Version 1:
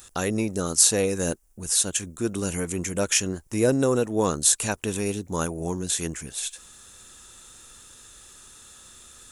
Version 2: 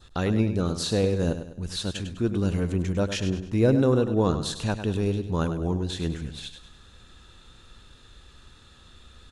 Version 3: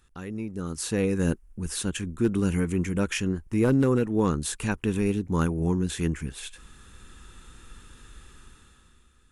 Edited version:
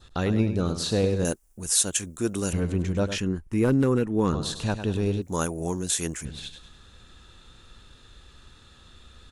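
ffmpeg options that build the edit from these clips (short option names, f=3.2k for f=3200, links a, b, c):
-filter_complex "[0:a]asplit=2[a][b];[1:a]asplit=4[c][d][e][f];[c]atrim=end=1.252[g];[a]atrim=start=1.248:end=2.532[h];[d]atrim=start=2.528:end=3.182[i];[2:a]atrim=start=3.178:end=4.332[j];[e]atrim=start=4.328:end=5.222[k];[b]atrim=start=5.218:end=6.252[l];[f]atrim=start=6.248[m];[g][h]acrossfade=d=0.004:c1=hsin:c2=hsin[n];[n][i]acrossfade=d=0.004:c1=hsin:c2=hsin[o];[o][j]acrossfade=d=0.004:c1=hsin:c2=hsin[p];[p][k]acrossfade=d=0.004:c1=hsin:c2=hsin[q];[q][l]acrossfade=d=0.004:c1=hsin:c2=hsin[r];[r][m]acrossfade=d=0.004:c1=hsin:c2=hsin"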